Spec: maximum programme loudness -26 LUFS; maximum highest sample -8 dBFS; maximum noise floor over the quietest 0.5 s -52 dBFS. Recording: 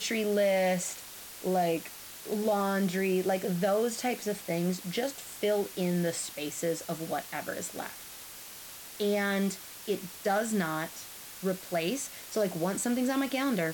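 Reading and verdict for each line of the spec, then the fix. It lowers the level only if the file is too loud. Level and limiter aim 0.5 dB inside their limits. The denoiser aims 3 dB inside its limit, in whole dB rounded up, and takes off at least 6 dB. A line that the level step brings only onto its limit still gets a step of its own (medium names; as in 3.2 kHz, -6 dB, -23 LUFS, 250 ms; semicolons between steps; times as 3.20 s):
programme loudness -31.0 LUFS: pass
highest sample -17.0 dBFS: pass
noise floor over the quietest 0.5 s -46 dBFS: fail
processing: noise reduction 9 dB, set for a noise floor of -46 dBFS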